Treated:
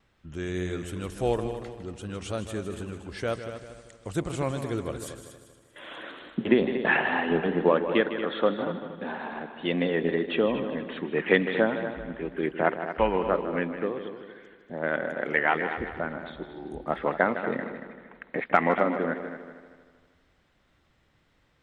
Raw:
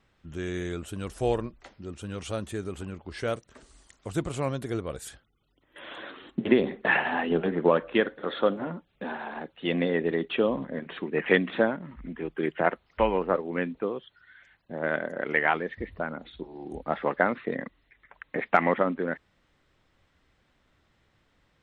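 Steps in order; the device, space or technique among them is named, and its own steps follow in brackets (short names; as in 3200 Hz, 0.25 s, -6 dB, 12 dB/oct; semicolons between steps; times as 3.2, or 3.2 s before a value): multi-head tape echo (multi-head echo 78 ms, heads second and third, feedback 44%, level -11 dB; wow and flutter 25 cents)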